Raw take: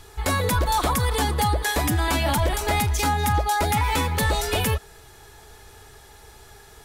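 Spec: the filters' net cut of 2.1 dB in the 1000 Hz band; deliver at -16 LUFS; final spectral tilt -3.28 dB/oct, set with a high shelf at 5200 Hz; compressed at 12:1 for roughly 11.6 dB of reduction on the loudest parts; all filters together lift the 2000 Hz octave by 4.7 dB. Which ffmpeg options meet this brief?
-af "equalizer=f=1k:t=o:g=-4,equalizer=f=2k:t=o:g=6,highshelf=f=5.2k:g=6.5,acompressor=threshold=-29dB:ratio=12,volume=16dB"

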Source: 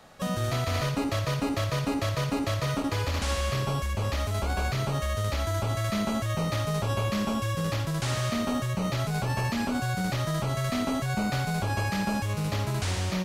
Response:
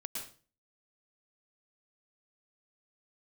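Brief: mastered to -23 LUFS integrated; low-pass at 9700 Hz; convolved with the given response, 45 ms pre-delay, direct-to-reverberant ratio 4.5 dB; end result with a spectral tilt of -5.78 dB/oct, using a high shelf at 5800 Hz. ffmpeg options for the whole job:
-filter_complex "[0:a]lowpass=9.7k,highshelf=f=5.8k:g=-8.5,asplit=2[a][b];[1:a]atrim=start_sample=2205,adelay=45[c];[b][c]afir=irnorm=-1:irlink=0,volume=-4dB[d];[a][d]amix=inputs=2:normalize=0,volume=4.5dB"

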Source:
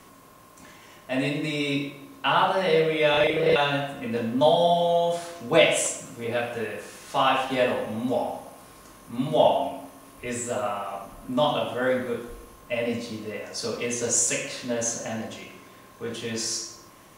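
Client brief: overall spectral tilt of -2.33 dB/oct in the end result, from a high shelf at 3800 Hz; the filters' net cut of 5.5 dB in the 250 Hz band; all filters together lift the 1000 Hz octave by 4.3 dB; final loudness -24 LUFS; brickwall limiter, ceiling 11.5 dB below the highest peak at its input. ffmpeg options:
-af "equalizer=f=250:t=o:g=-7,equalizer=f=1k:t=o:g=6,highshelf=f=3.8k:g=5,volume=3dB,alimiter=limit=-13dB:level=0:latency=1"

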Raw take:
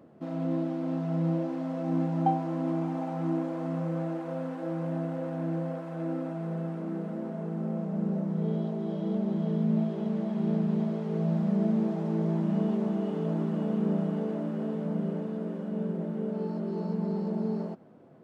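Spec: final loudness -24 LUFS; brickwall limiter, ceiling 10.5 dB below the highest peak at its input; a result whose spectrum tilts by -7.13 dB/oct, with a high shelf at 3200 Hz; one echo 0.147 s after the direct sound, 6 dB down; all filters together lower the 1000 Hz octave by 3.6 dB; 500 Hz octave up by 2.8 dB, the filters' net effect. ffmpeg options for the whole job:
-af "equalizer=f=500:t=o:g=6,equalizer=f=1k:t=o:g=-8.5,highshelf=f=3.2k:g=-6,alimiter=level_in=1dB:limit=-24dB:level=0:latency=1,volume=-1dB,aecho=1:1:147:0.501,volume=8.5dB"

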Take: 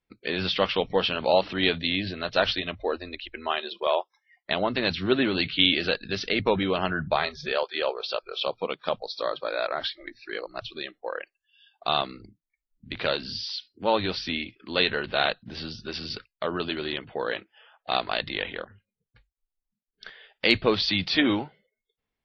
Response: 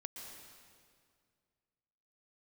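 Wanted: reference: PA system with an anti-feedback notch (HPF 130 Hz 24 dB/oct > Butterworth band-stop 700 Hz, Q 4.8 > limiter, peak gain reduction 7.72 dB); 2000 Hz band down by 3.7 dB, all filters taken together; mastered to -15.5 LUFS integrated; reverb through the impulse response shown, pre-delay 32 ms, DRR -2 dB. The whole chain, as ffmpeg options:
-filter_complex "[0:a]equalizer=f=2k:t=o:g=-5,asplit=2[a][b];[1:a]atrim=start_sample=2205,adelay=32[c];[b][c]afir=irnorm=-1:irlink=0,volume=5dB[d];[a][d]amix=inputs=2:normalize=0,highpass=f=130:w=0.5412,highpass=f=130:w=1.3066,asuperstop=centerf=700:order=8:qfactor=4.8,volume=10.5dB,alimiter=limit=-2dB:level=0:latency=1"

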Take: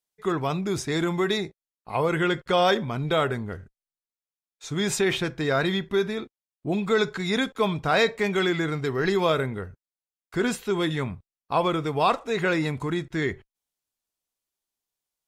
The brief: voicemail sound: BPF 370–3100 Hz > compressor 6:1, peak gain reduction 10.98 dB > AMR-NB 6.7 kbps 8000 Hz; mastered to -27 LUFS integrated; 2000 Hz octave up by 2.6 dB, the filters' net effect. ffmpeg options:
-af "highpass=370,lowpass=3.1k,equalizer=f=2k:t=o:g=4,acompressor=threshold=-27dB:ratio=6,volume=6.5dB" -ar 8000 -c:a libopencore_amrnb -b:a 6700

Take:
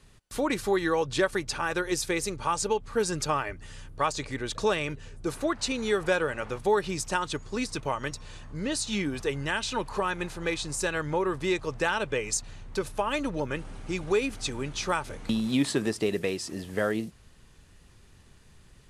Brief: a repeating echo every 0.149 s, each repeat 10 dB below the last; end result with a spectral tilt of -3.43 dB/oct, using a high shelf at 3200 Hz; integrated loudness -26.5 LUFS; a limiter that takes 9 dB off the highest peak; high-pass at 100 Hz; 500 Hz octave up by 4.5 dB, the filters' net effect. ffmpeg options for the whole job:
-af "highpass=100,equalizer=f=500:t=o:g=5.5,highshelf=f=3.2k:g=4,alimiter=limit=-17dB:level=0:latency=1,aecho=1:1:149|298|447|596:0.316|0.101|0.0324|0.0104,volume=2dB"

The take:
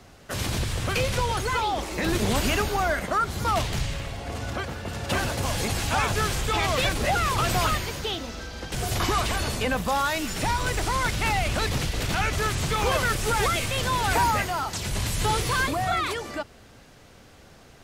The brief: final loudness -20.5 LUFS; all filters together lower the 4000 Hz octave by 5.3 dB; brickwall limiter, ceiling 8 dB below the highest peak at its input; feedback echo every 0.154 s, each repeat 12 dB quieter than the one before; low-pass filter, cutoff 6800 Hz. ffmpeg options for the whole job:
-af "lowpass=6.8k,equalizer=f=4k:t=o:g=-6.5,alimiter=limit=-19.5dB:level=0:latency=1,aecho=1:1:154|308|462:0.251|0.0628|0.0157,volume=8.5dB"

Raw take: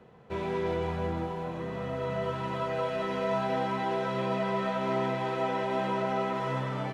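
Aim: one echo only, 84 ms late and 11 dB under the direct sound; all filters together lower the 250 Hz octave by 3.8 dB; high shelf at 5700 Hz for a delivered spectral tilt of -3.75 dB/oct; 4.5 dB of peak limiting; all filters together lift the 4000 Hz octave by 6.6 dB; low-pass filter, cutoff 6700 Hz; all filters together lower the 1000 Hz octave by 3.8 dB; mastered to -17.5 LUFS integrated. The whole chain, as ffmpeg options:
-af "lowpass=6.7k,equalizer=f=250:t=o:g=-5.5,equalizer=f=1k:t=o:g=-5,equalizer=f=4k:t=o:g=8,highshelf=f=5.7k:g=4,alimiter=level_in=0.5dB:limit=-24dB:level=0:latency=1,volume=-0.5dB,aecho=1:1:84:0.282,volume=16dB"

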